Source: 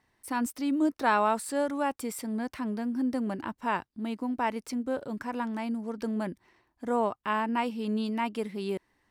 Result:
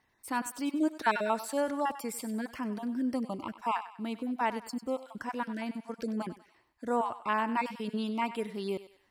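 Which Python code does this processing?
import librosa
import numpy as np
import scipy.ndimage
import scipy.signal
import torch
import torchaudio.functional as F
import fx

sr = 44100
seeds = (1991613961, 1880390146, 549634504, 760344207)

y = fx.spec_dropout(x, sr, seeds[0], share_pct=23)
y = fx.low_shelf(y, sr, hz=450.0, db=-3.5)
y = fx.echo_thinned(y, sr, ms=97, feedback_pct=43, hz=610.0, wet_db=-12.5)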